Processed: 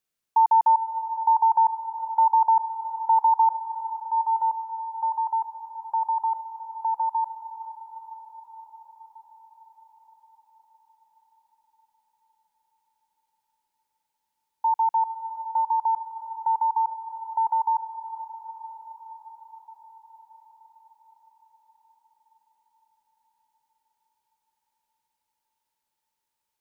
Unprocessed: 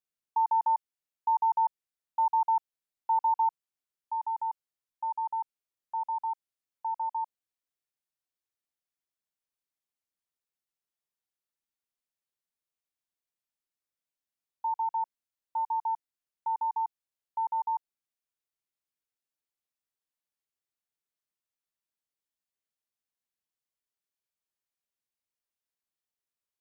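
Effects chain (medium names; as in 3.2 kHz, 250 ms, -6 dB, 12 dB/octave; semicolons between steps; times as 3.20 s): echo that smears into a reverb 477 ms, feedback 69%, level -11 dB; trim +8 dB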